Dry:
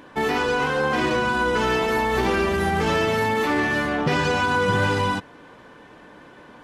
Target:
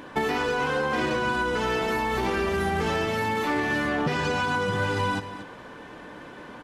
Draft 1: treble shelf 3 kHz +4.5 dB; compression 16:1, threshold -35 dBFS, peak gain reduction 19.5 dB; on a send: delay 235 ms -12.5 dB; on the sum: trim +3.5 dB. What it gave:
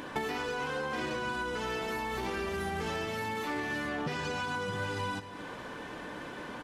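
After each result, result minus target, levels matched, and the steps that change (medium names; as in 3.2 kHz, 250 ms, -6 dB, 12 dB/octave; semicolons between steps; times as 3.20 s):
compression: peak gain reduction +9.5 dB; 8 kHz band +4.0 dB
change: compression 16:1, threshold -25.5 dBFS, peak gain reduction 10.5 dB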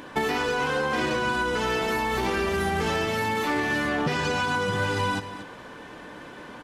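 8 kHz band +3.0 dB
remove: treble shelf 3 kHz +4.5 dB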